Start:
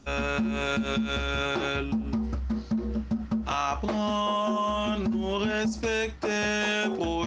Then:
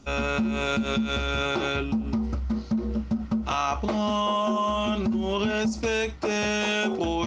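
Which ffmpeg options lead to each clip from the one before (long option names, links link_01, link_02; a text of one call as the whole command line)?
ffmpeg -i in.wav -af "bandreject=frequency=1700:width=8.7,volume=2dB" out.wav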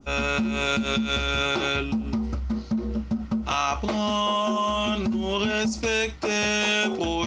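ffmpeg -i in.wav -af "adynamicequalizer=threshold=0.0141:dfrequency=1600:dqfactor=0.7:tfrequency=1600:tqfactor=0.7:attack=5:release=100:ratio=0.375:range=2.5:mode=boostabove:tftype=highshelf" out.wav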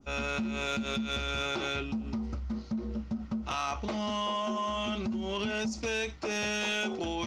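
ffmpeg -i in.wav -af "asoftclip=type=tanh:threshold=-14.5dB,volume=-7dB" out.wav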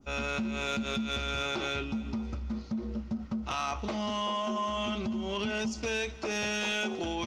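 ffmpeg -i in.wav -af "aecho=1:1:278|556|834|1112:0.1|0.051|0.026|0.0133" out.wav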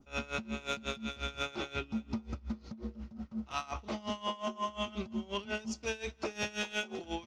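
ffmpeg -i in.wav -af "aeval=exprs='val(0)*pow(10,-20*(0.5-0.5*cos(2*PI*5.6*n/s))/20)':channel_layout=same" out.wav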